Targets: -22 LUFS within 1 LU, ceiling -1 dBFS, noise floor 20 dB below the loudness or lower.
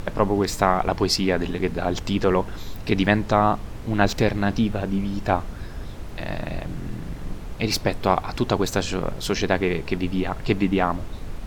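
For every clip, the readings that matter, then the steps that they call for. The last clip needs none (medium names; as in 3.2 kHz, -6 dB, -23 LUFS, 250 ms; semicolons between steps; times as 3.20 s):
noise floor -35 dBFS; noise floor target -44 dBFS; loudness -23.5 LUFS; peak level -1.0 dBFS; loudness target -22.0 LUFS
-> noise print and reduce 9 dB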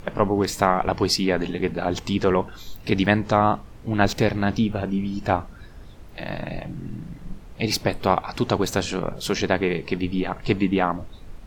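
noise floor -42 dBFS; noise floor target -44 dBFS
-> noise print and reduce 6 dB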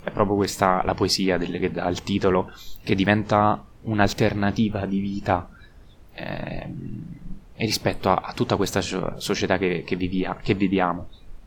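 noise floor -47 dBFS; loudness -23.5 LUFS; peak level -1.5 dBFS; loudness target -22.0 LUFS
-> trim +1.5 dB; peak limiter -1 dBFS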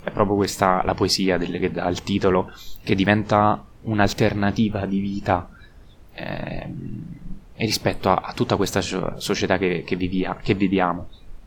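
loudness -22.0 LUFS; peak level -1.0 dBFS; noise floor -46 dBFS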